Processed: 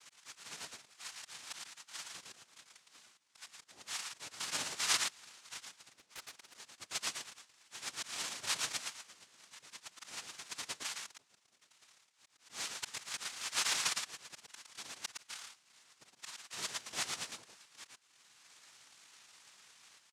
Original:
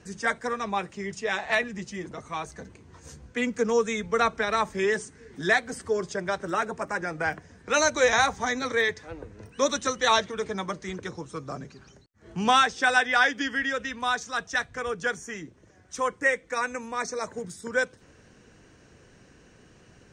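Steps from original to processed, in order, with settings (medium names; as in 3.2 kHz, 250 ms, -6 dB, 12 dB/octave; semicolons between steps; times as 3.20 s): in parallel at -3 dB: compression 10:1, threshold -36 dBFS, peak gain reduction 20.5 dB; on the sum: slow attack 746 ms; Butterworth band-pass 2.2 kHz, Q 1.3; on a send: delay 113 ms -4.5 dB; on the sum: noise-vocoded speech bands 2; 5.92–6.54 s: loudspeaker Doppler distortion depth 0.78 ms; trim -2 dB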